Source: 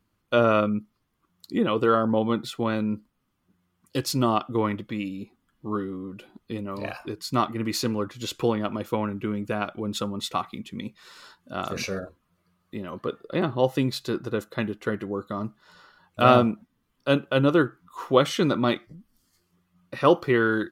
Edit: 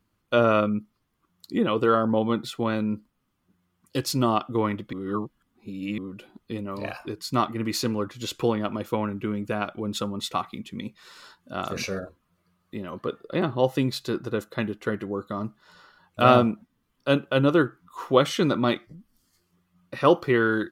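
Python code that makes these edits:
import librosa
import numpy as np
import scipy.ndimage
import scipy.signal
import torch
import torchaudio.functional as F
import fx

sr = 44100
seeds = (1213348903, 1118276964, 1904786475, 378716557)

y = fx.edit(x, sr, fx.reverse_span(start_s=4.93, length_s=1.05), tone=tone)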